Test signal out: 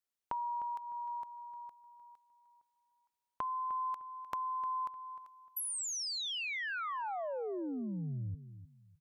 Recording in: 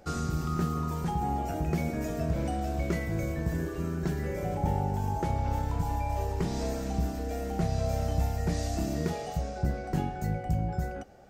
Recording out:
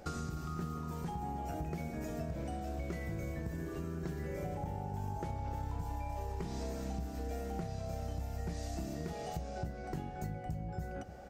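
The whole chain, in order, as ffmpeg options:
-filter_complex "[0:a]acompressor=threshold=0.0112:ratio=6,asplit=2[s0][s1];[s1]adelay=304,lowpass=f=3200:p=1,volume=0.237,asplit=2[s2][s3];[s3]adelay=304,lowpass=f=3200:p=1,volume=0.27,asplit=2[s4][s5];[s5]adelay=304,lowpass=f=3200:p=1,volume=0.27[s6];[s2][s4][s6]amix=inputs=3:normalize=0[s7];[s0][s7]amix=inputs=2:normalize=0,volume=1.26"

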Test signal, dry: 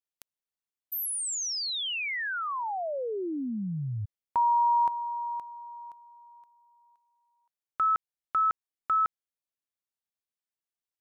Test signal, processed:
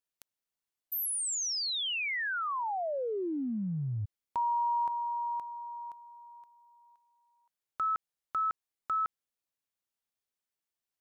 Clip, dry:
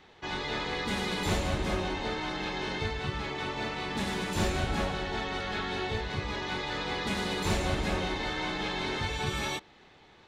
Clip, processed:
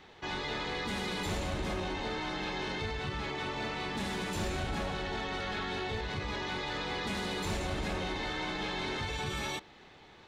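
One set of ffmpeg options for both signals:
-af "acompressor=threshold=0.0224:ratio=2.5:attack=0.26:release=36:knee=6:detection=rms,volume=1.19"

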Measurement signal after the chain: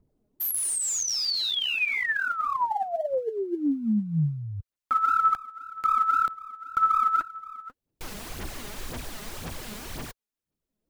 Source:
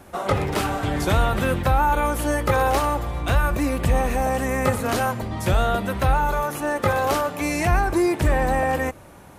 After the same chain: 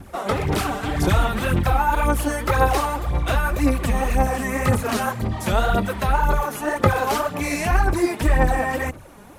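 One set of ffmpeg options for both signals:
-filter_complex "[0:a]adynamicequalizer=threshold=0.0282:dfrequency=510:dqfactor=1.1:tfrequency=510:tqfactor=1.1:attack=5:release=100:ratio=0.375:range=1.5:mode=cutabove:tftype=bell,acrossover=split=470|5400[s0][s1][s2];[s0]acompressor=mode=upward:threshold=0.00794:ratio=2.5[s3];[s3][s1][s2]amix=inputs=3:normalize=0,aphaser=in_gain=1:out_gain=1:delay=4.9:decay=0.6:speed=1.9:type=sinusoidal,volume=0.891"

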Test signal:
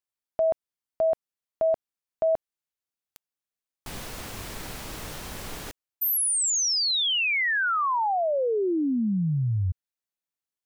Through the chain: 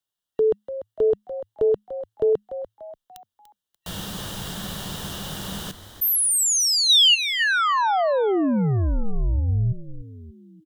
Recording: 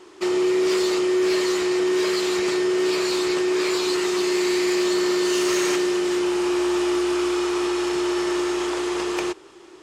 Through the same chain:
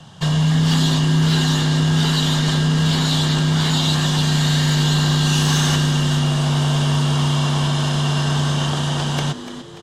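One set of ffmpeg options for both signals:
-filter_complex "[0:a]superequalizer=12b=0.398:13b=2,asplit=5[s0][s1][s2][s3][s4];[s1]adelay=292,afreqshift=100,volume=0.237[s5];[s2]adelay=584,afreqshift=200,volume=0.0977[s6];[s3]adelay=876,afreqshift=300,volume=0.0398[s7];[s4]adelay=1168,afreqshift=400,volume=0.0164[s8];[s0][s5][s6][s7][s8]amix=inputs=5:normalize=0,afreqshift=-210,volume=1.58"

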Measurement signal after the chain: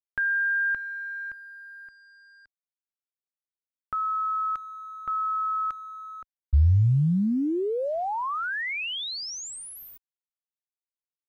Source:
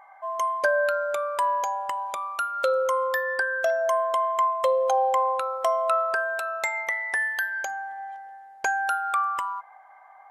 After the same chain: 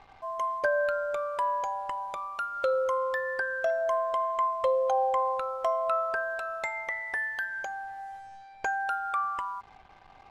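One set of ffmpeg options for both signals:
-af "acrusher=bits=7:mix=0:aa=0.5,aemphasis=mode=reproduction:type=bsi,volume=0.596"

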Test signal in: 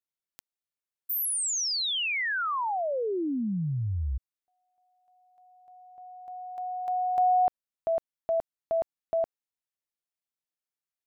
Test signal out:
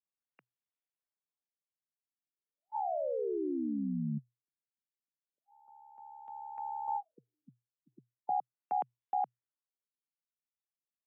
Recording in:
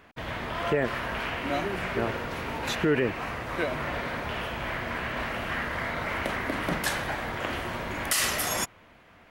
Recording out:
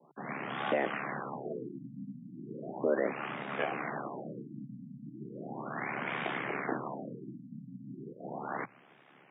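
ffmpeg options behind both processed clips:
-af "aeval=exprs='val(0)*sin(2*PI*35*n/s)':c=same,afreqshift=120,afftfilt=real='re*lt(b*sr/1024,260*pow(3800/260,0.5+0.5*sin(2*PI*0.36*pts/sr)))':imag='im*lt(b*sr/1024,260*pow(3800/260,0.5+0.5*sin(2*PI*0.36*pts/sr)))':win_size=1024:overlap=0.75,volume=0.794"

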